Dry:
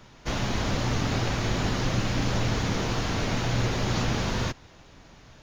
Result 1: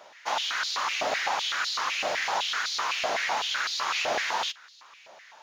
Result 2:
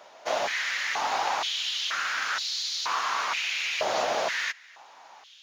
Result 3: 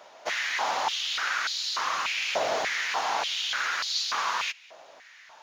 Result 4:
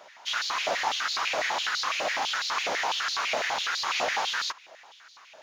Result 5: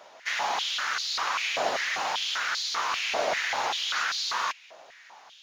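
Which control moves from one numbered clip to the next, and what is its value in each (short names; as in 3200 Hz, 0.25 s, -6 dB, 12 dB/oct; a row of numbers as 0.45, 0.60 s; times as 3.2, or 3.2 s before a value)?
stepped high-pass, rate: 7.9, 2.1, 3.4, 12, 5.1 Hz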